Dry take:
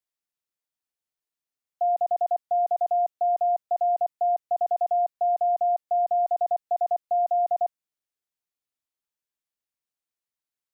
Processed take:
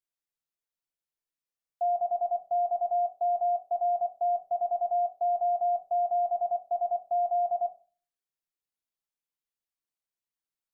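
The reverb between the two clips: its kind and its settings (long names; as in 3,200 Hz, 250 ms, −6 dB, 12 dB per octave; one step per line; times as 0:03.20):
rectangular room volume 200 cubic metres, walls furnished, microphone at 0.73 metres
level −5.5 dB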